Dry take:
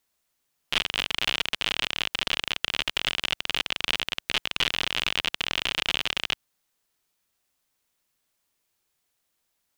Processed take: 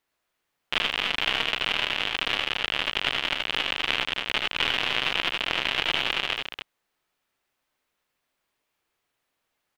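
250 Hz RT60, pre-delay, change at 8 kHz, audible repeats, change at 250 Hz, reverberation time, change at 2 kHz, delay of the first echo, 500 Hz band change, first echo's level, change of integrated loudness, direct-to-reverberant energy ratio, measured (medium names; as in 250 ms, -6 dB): no reverb, no reverb, -6.5 dB, 2, +2.0 dB, no reverb, +3.0 dB, 77 ms, +4.0 dB, -5.0 dB, +1.5 dB, no reverb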